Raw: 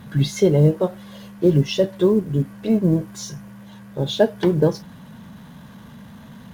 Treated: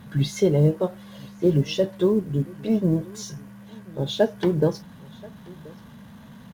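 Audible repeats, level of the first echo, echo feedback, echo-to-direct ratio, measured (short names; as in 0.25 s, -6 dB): 1, -23.5 dB, no steady repeat, -23.5 dB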